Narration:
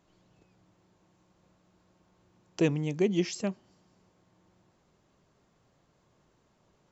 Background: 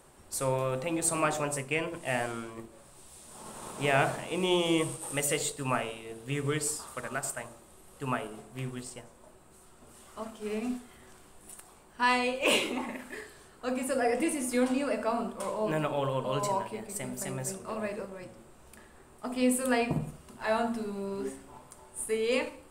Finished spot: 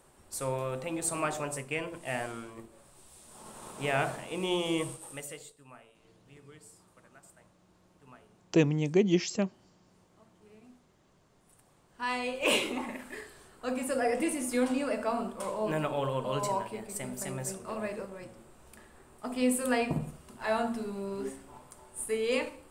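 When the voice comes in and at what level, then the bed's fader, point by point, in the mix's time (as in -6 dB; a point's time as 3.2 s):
5.95 s, +2.0 dB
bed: 4.9 s -3.5 dB
5.67 s -23 dB
11.17 s -23 dB
12.45 s -1 dB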